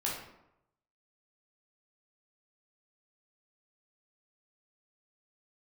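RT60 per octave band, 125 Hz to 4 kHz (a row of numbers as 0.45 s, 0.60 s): 0.95 s, 0.80 s, 0.85 s, 0.85 s, 0.65 s, 0.50 s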